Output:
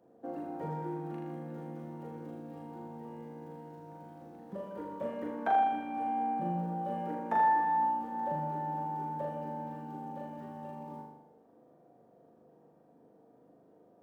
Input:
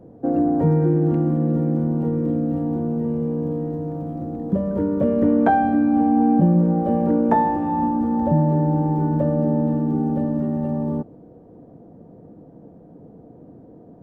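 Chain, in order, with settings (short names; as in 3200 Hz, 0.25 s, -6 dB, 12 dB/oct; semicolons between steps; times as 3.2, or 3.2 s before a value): HPF 1500 Hz 6 dB/oct; on a send: flutter echo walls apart 6.8 m, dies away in 0.86 s; on the sum: gain -6.5 dB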